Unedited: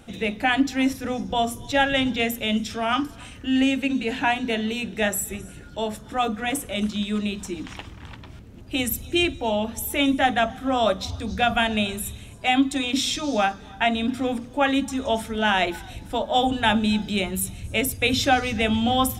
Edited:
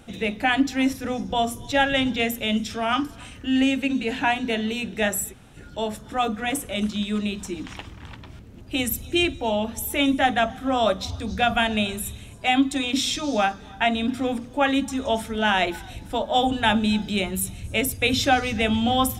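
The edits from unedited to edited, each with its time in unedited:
5.31–5.56 s: room tone, crossfade 0.06 s

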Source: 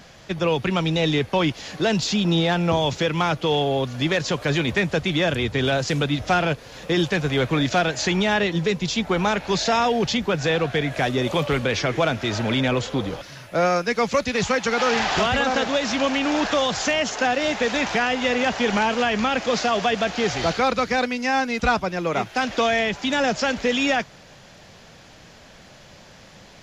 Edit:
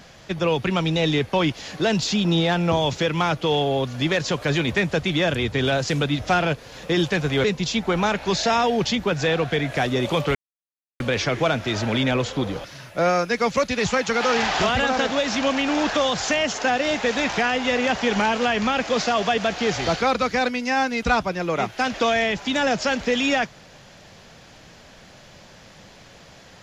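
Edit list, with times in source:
7.44–8.66 s: delete
11.57 s: insert silence 0.65 s

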